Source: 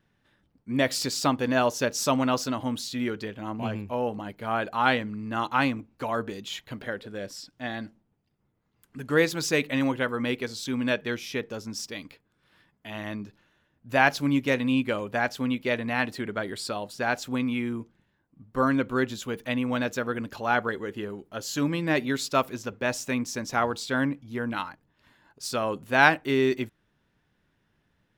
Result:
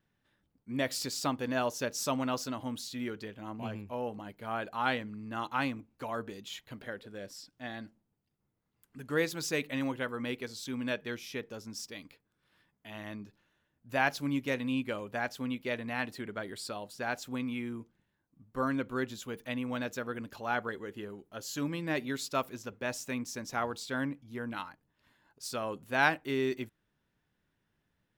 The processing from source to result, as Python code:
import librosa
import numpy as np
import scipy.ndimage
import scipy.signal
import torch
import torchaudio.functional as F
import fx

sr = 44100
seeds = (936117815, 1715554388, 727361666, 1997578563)

y = fx.high_shelf(x, sr, hz=9000.0, db=5.5)
y = y * 10.0 ** (-8.0 / 20.0)